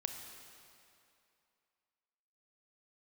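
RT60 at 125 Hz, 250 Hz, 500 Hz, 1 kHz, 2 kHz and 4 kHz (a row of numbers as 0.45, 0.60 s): 2.3, 2.5, 2.6, 2.7, 2.5, 2.2 s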